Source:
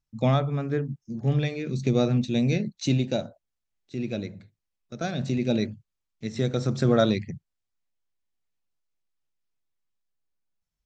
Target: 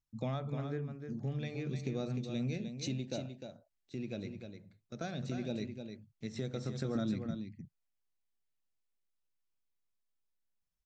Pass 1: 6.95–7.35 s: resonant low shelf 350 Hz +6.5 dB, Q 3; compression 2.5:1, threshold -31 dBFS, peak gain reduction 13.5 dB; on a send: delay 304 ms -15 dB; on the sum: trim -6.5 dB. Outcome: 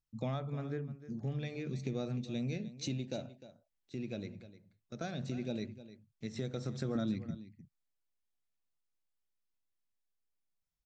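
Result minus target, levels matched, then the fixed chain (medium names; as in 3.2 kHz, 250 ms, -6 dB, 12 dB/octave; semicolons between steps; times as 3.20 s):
echo-to-direct -7.5 dB
6.95–7.35 s: resonant low shelf 350 Hz +6.5 dB, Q 3; compression 2.5:1, threshold -31 dBFS, peak gain reduction 13.5 dB; on a send: delay 304 ms -7.5 dB; on the sum: trim -6.5 dB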